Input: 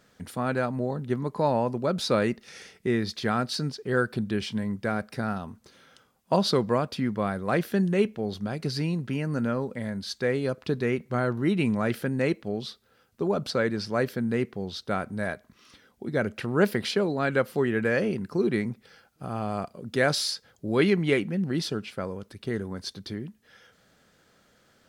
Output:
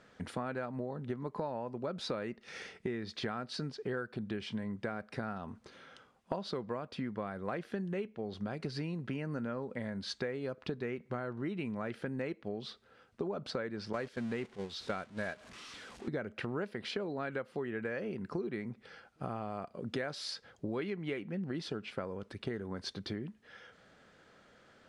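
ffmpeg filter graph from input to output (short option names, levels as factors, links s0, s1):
-filter_complex "[0:a]asettb=1/sr,asplit=3[s0][s1][s2];[s0]atrim=end=13.934[s3];[s1]atrim=start=13.93:end=16.08,asetpts=PTS-STARTPTS,afade=t=in:d=0.004:c=qsin,afade=t=out:st=2.146:d=0.004:c=qsin,aeval=exprs='val(0)+0.5*0.0158*sgn(val(0))':c=same,agate=range=0.251:threshold=0.0316:ratio=16:release=100:detection=peak,equalizer=f=6100:t=o:w=2.5:g=8[s4];[s2]atrim=start=16.076[s5];[s3][s4]acrossfade=d=0.004:c1=hsin:c2=qsin[s6];[s6][s5]acrossfade=d=0.004:c1=qsin:c2=hsin,lowpass=f=9700:w=0.5412,lowpass=f=9700:w=1.3066,bass=f=250:g=-4,treble=f=4000:g=-10,acompressor=threshold=0.0158:ratio=12,volume=1.26"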